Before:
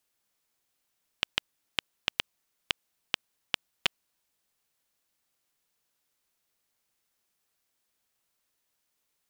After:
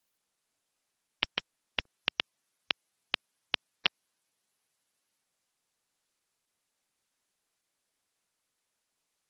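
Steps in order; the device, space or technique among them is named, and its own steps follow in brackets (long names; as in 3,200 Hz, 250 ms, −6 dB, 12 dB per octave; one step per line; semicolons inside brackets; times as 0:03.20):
noise-suppressed video call (high-pass filter 100 Hz 12 dB per octave; gate on every frequency bin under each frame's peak −20 dB strong; Opus 16 kbit/s 48,000 Hz)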